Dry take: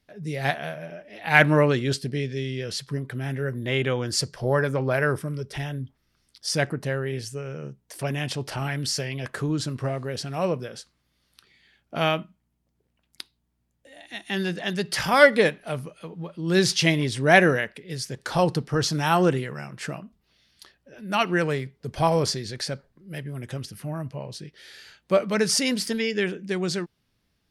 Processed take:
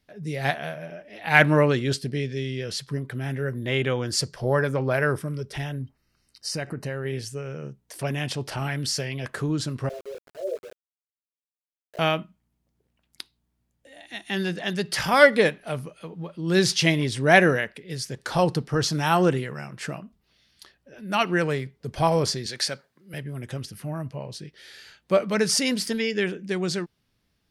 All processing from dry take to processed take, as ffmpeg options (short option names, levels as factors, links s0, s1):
-filter_complex "[0:a]asettb=1/sr,asplit=3[s0][s1][s2];[s0]atrim=end=5.724[s3];[s1]atrim=start=5.72:end=7.05,asetpts=PTS-STARTPTS,afade=t=in:d=0.004:c=qsin,afade=t=out:st=1.326:d=0.004:c=qsin,asuperstop=centerf=3400:order=20:qfactor=7.5,acompressor=threshold=0.0501:ratio=6:attack=3.2:release=140:knee=1:detection=peak[s4];[s2]atrim=start=7.046[s5];[s3][s4]acrossfade=d=0.004:c1=hsin:c2=qsin[s6];[s6][s5]acrossfade=d=0.004:c1=qsin:c2=hsin,asettb=1/sr,asplit=3[s7][s8][s9];[s7]atrim=end=9.894[s10];[s8]atrim=start=9.89:end=11.99,asetpts=PTS-STARTPTS,afade=t=in:d=0.004:c=qsin,afade=t=out:st=2.096:d=0.004:c=qsin,flanger=delay=17:depth=2.2:speed=2.9,asuperpass=centerf=490:order=20:qfactor=1.6,aeval=exprs='val(0)*gte(abs(val(0)),0.0075)':c=same[s11];[s9]atrim=start=11.986[s12];[s10][s11]acrossfade=d=0.004:c1=hsin:c2=qsin[s13];[s13][s12]acrossfade=d=0.004:c1=qsin:c2=hsin,asettb=1/sr,asplit=3[s14][s15][s16];[s14]atrim=end=22.464[s17];[s15]atrim=start=22.46:end=23.14,asetpts=PTS-STARTPTS,afade=t=in:d=0.004:c=qsin,afade=t=out:st=0.676:d=0.004:c=qsin,highpass=130,tiltshelf=f=680:g=-5.5[s18];[s16]atrim=start=23.136[s19];[s17][s18]acrossfade=d=0.004:c1=hsin:c2=qsin[s20];[s20][s19]acrossfade=d=0.004:c1=qsin:c2=hsin"